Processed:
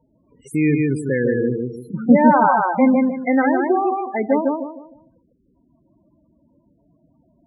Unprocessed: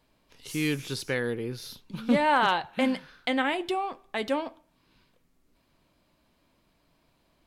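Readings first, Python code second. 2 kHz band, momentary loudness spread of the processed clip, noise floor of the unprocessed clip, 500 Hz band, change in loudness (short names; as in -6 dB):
+4.5 dB, 13 LU, -69 dBFS, +11.0 dB, +10.0 dB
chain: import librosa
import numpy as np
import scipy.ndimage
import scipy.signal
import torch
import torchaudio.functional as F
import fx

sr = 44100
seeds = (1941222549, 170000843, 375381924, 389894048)

y = fx.graphic_eq(x, sr, hz=(250, 4000, 8000), db=(3, -12, 6))
y = fx.echo_feedback(y, sr, ms=152, feedback_pct=32, wet_db=-3)
y = fx.rev_schroeder(y, sr, rt60_s=0.96, comb_ms=33, drr_db=18.5)
y = fx.spec_topn(y, sr, count=16)
y = scipy.signal.sosfilt(scipy.signal.butter(2, 61.0, 'highpass', fs=sr, output='sos'), y)
y = F.gain(torch.from_numpy(y), 9.0).numpy()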